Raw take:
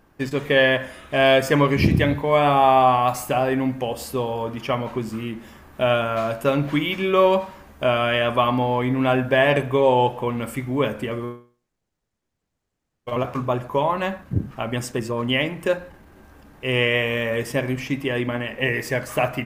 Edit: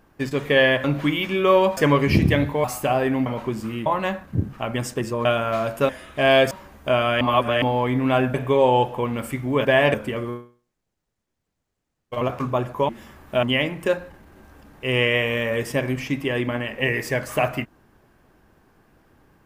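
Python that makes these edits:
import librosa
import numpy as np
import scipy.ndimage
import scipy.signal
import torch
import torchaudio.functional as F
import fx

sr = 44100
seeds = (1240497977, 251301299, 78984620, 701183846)

y = fx.edit(x, sr, fx.swap(start_s=0.84, length_s=0.62, other_s=6.53, other_length_s=0.93),
    fx.cut(start_s=2.33, length_s=0.77),
    fx.cut(start_s=3.72, length_s=1.03),
    fx.swap(start_s=5.35, length_s=0.54, other_s=13.84, other_length_s=1.39),
    fx.reverse_span(start_s=8.16, length_s=0.41),
    fx.move(start_s=9.29, length_s=0.29, to_s=10.89), tone=tone)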